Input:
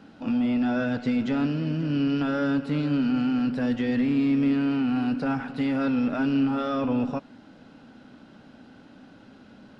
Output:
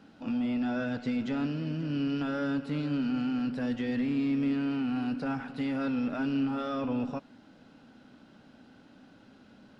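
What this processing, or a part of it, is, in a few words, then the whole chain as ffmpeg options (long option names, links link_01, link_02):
exciter from parts: -filter_complex "[0:a]asplit=2[link_01][link_02];[link_02]highpass=frequency=4300:poles=1,asoftclip=type=tanh:threshold=-36.5dB,volume=-7dB[link_03];[link_01][link_03]amix=inputs=2:normalize=0,volume=-6dB"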